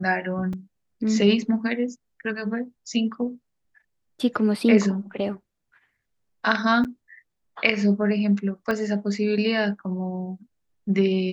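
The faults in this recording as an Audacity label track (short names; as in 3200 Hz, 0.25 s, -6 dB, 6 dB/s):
0.530000	0.530000	gap 3.6 ms
6.840000	6.850000	gap 8.2 ms
8.710000	8.710000	pop -14 dBFS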